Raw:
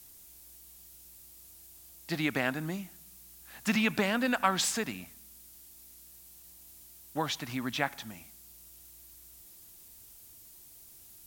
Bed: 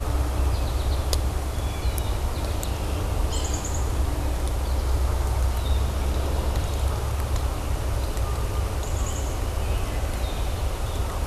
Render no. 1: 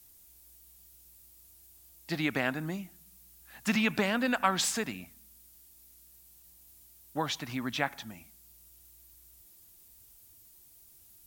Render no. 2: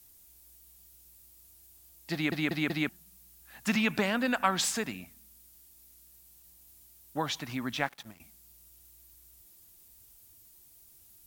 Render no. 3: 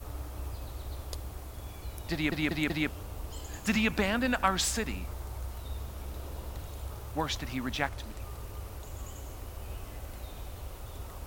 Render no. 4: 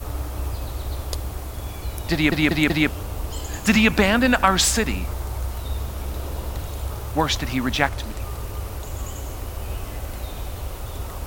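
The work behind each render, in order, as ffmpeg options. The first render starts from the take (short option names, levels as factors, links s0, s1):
-af "afftdn=nr=6:nf=-54"
-filter_complex "[0:a]asettb=1/sr,asplit=3[s0][s1][s2];[s0]atrim=end=7.754[s3];[s1]atrim=start=7.75:end=8.2,asetpts=PTS-STARTPTS,afade=t=in:d=0.004:c=qsin,afade=t=out:st=0.446:d=0.004:c=qsin,aeval=exprs='sgn(val(0))*max(abs(val(0))-0.00376,0)':c=same[s4];[s2]atrim=start=8.196[s5];[s3][s4]acrossfade=d=0.004:c1=hsin:c2=qsin[s6];[s6][s5]acrossfade=d=0.004:c1=qsin:c2=hsin,asplit=5[s7][s8][s9][s10][s11];[s7]atrim=end=2.322[s12];[s8]atrim=start=2.128:end=2.322[s13];[s9]atrim=start=2.128:end=2.322[s14];[s10]atrim=start=2.128:end=2.322[s15];[s11]atrim=start=2.888[s16];[s12][s13]acrossfade=d=0.004:c1=hsin:c2=hsin[s17];[s17][s14]acrossfade=d=0.004:c1=hsin:c2=hsin[s18];[s18][s15]acrossfade=d=0.004:c1=hsin:c2=hsin[s19];[s19][s16]acrossfade=d=0.004:c1=hsin:c2=hsin"
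-filter_complex "[1:a]volume=0.168[s0];[0:a][s0]amix=inputs=2:normalize=0"
-af "volume=3.55,alimiter=limit=0.794:level=0:latency=1"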